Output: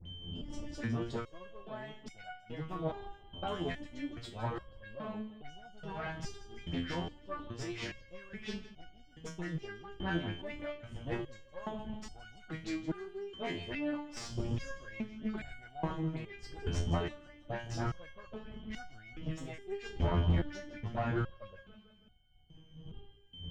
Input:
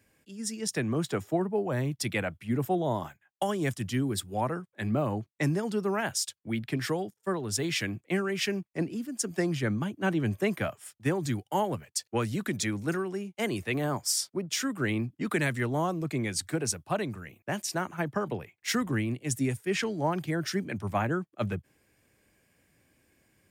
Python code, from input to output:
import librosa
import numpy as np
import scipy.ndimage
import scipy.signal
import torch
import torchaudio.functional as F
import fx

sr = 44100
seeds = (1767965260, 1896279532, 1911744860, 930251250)

p1 = fx.dmg_wind(x, sr, seeds[0], corner_hz=120.0, level_db=-33.0)
p2 = fx.peak_eq(p1, sr, hz=7100.0, db=3.5, octaves=0.41)
p3 = p2 + 10.0 ** (-42.0 / 20.0) * np.sin(2.0 * np.pi * 3100.0 * np.arange(len(p2)) / sr)
p4 = fx.dispersion(p3, sr, late='highs', ms=65.0, hz=1500.0)
p5 = p4 + fx.echo_feedback(p4, sr, ms=163, feedback_pct=54, wet_db=-15.5, dry=0)
p6 = fx.tube_stage(p5, sr, drive_db=24.0, bias=0.8)
p7 = fx.air_absorb(p6, sr, metres=170.0)
p8 = fx.resonator_held(p7, sr, hz=2.4, low_hz=86.0, high_hz=740.0)
y = F.gain(torch.from_numpy(p8), 7.5).numpy()